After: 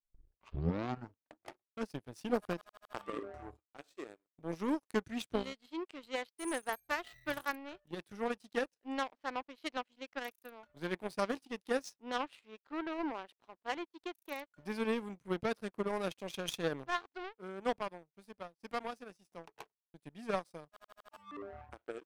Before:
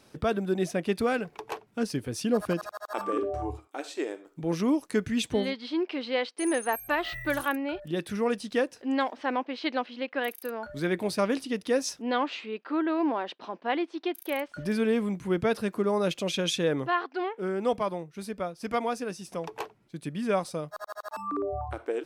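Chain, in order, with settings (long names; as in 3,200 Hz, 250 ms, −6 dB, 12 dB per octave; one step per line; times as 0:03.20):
turntable start at the beginning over 1.86 s
power curve on the samples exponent 2
noise gate with hold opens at −59 dBFS
level −3 dB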